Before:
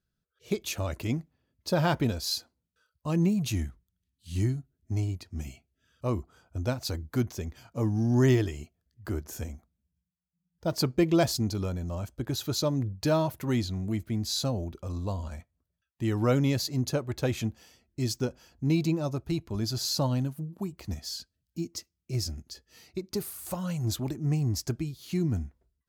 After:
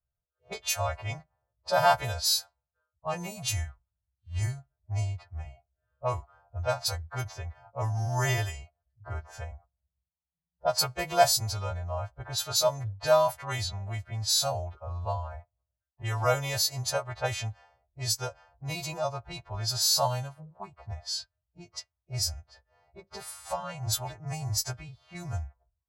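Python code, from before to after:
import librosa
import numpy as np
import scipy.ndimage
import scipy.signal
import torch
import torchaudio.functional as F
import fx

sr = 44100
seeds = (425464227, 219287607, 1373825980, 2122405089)

y = fx.freq_snap(x, sr, grid_st=2)
y = fx.env_lowpass(y, sr, base_hz=490.0, full_db=-22.5)
y = fx.curve_eq(y, sr, hz=(110.0, 270.0, 680.0, 2800.0), db=(0, -27, 9, -2))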